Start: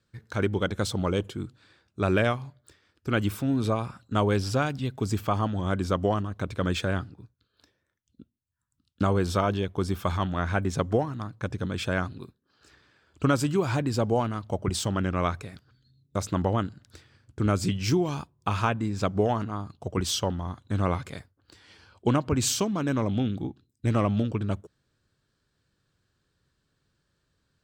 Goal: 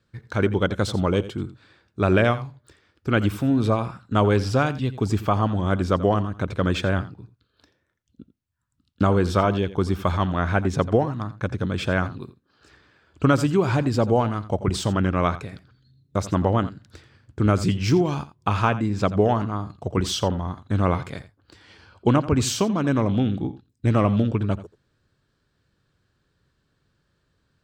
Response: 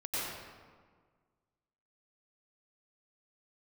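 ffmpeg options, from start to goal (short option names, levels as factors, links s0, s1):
-filter_complex "[0:a]highshelf=f=5400:g=-9,asplit=2[s0][s1];[1:a]atrim=start_sample=2205,atrim=end_sample=3528,adelay=85[s2];[s1][s2]afir=irnorm=-1:irlink=0,volume=0.316[s3];[s0][s3]amix=inputs=2:normalize=0,volume=1.78"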